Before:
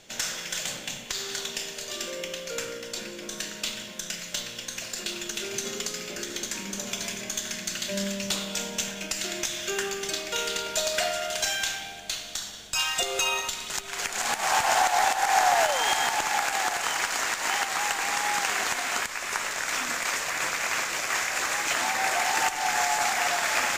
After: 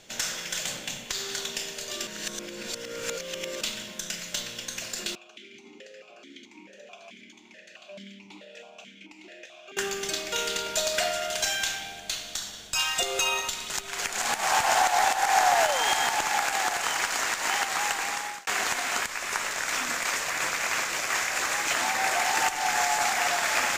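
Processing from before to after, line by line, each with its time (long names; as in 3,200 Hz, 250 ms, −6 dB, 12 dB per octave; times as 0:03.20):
0:02.07–0:03.61: reverse
0:05.15–0:09.77: formant filter that steps through the vowels 4.6 Hz
0:17.77–0:18.47: fade out equal-power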